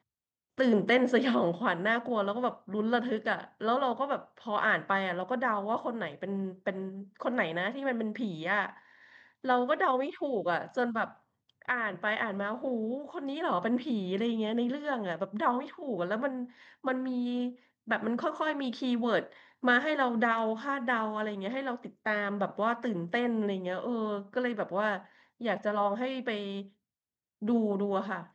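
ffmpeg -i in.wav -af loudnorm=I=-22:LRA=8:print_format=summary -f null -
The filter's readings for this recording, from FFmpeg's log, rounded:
Input Integrated:    -31.3 LUFS
Input True Peak:     -13.2 dBTP
Input LRA:             3.5 LU
Input Threshold:     -41.5 LUFS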